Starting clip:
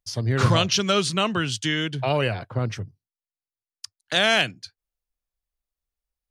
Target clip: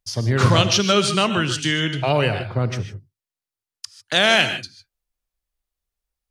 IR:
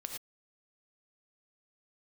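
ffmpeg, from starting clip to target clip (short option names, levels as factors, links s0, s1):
-filter_complex "[0:a]asplit=2[s0][s1];[1:a]atrim=start_sample=2205,asetrate=32634,aresample=44100[s2];[s1][s2]afir=irnorm=-1:irlink=0,volume=0.794[s3];[s0][s3]amix=inputs=2:normalize=0,volume=0.891"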